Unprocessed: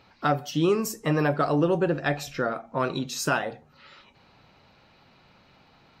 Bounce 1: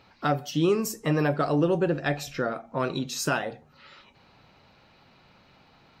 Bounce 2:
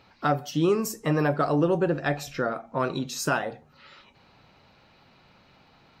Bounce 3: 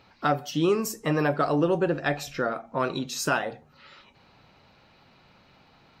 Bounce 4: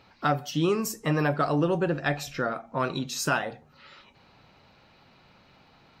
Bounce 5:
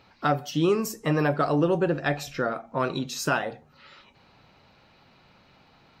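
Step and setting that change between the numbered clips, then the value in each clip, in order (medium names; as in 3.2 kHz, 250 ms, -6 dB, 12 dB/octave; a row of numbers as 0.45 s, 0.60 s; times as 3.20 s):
dynamic bell, frequency: 1.1 kHz, 3 kHz, 120 Hz, 430 Hz, 9 kHz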